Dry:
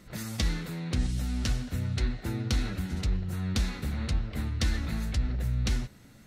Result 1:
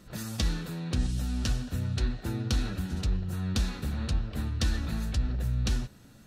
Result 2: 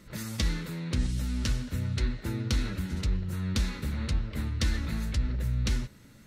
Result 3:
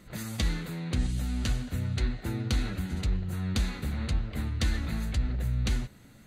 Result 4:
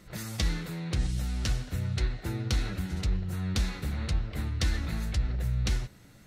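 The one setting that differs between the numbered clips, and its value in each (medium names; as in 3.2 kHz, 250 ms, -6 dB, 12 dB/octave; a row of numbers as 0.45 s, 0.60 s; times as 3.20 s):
band-stop, frequency: 2.1 kHz, 730 Hz, 5.4 kHz, 240 Hz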